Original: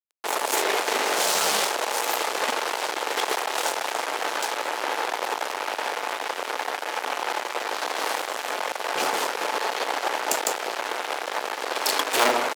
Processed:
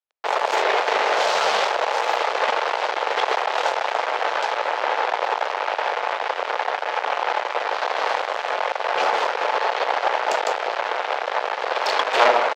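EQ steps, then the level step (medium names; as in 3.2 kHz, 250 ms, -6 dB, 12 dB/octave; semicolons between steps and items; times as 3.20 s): distance through air 190 m; resonant low shelf 390 Hz -9.5 dB, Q 1.5; +5.0 dB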